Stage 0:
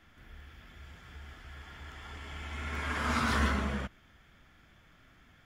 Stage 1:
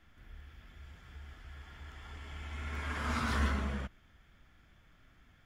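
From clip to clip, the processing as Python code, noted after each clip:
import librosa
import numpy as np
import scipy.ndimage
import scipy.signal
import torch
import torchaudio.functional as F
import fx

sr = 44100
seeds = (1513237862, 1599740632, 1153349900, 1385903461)

y = fx.low_shelf(x, sr, hz=78.0, db=8.0)
y = y * 10.0 ** (-5.0 / 20.0)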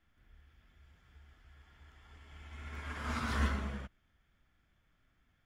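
y = fx.upward_expand(x, sr, threshold_db=-48.0, expansion=1.5)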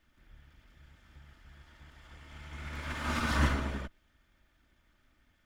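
y = fx.lower_of_two(x, sr, delay_ms=3.3)
y = y * 10.0 ** (6.0 / 20.0)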